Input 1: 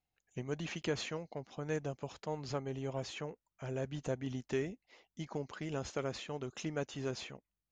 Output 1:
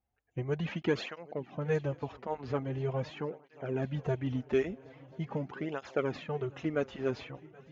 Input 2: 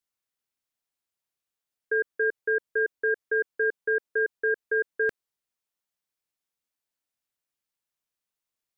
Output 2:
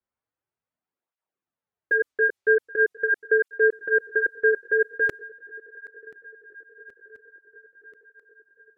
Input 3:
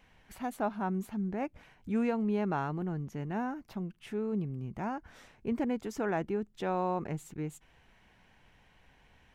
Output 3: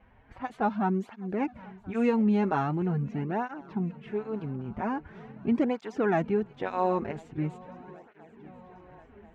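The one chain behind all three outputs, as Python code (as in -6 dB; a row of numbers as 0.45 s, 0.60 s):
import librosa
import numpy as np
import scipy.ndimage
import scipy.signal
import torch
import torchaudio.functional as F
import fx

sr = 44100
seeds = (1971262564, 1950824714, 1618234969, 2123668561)

y = fx.env_lowpass(x, sr, base_hz=1400.0, full_db=-23.0)
y = fx.echo_swing(y, sr, ms=1034, ratio=3, feedback_pct=60, wet_db=-22.0)
y = fx.flanger_cancel(y, sr, hz=0.43, depth_ms=7.0)
y = F.gain(torch.from_numpy(y), 8.0).numpy()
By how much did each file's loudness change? +5.5 LU, +4.5 LU, +5.0 LU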